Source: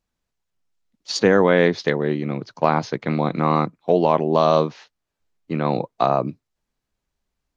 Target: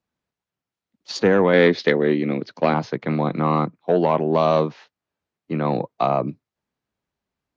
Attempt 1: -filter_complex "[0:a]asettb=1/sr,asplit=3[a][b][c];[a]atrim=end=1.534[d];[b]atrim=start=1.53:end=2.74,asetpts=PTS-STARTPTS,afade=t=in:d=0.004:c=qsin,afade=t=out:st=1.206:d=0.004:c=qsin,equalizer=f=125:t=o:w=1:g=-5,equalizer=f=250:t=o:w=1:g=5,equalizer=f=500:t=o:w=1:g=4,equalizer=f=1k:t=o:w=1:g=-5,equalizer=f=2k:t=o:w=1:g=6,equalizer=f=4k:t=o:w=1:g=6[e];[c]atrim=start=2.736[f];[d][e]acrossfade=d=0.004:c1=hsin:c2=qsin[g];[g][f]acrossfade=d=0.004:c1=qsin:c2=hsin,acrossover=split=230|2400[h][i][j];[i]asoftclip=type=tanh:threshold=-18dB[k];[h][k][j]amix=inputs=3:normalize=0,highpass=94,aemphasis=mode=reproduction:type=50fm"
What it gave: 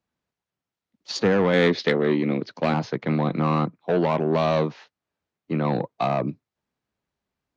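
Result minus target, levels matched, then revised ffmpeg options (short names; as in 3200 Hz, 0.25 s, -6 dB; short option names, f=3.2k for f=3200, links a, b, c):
soft clip: distortion +9 dB
-filter_complex "[0:a]asettb=1/sr,asplit=3[a][b][c];[a]atrim=end=1.534[d];[b]atrim=start=1.53:end=2.74,asetpts=PTS-STARTPTS,afade=t=in:d=0.004:c=qsin,afade=t=out:st=1.206:d=0.004:c=qsin,equalizer=f=125:t=o:w=1:g=-5,equalizer=f=250:t=o:w=1:g=5,equalizer=f=500:t=o:w=1:g=4,equalizer=f=1k:t=o:w=1:g=-5,equalizer=f=2k:t=o:w=1:g=6,equalizer=f=4k:t=o:w=1:g=6[e];[c]atrim=start=2.736[f];[d][e]acrossfade=d=0.004:c1=hsin:c2=qsin[g];[g][f]acrossfade=d=0.004:c1=qsin:c2=hsin,acrossover=split=230|2400[h][i][j];[i]asoftclip=type=tanh:threshold=-8.5dB[k];[h][k][j]amix=inputs=3:normalize=0,highpass=94,aemphasis=mode=reproduction:type=50fm"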